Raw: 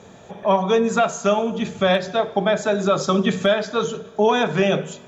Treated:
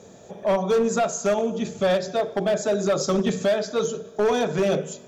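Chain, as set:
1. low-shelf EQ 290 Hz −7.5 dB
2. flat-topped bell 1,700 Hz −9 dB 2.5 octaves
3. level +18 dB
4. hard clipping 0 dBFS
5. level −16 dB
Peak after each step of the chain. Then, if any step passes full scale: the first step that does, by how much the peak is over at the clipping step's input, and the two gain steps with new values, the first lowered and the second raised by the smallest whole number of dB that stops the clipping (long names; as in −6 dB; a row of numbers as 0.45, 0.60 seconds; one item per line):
−7.0, −10.0, +8.0, 0.0, −16.0 dBFS
step 3, 8.0 dB
step 3 +10 dB, step 5 −8 dB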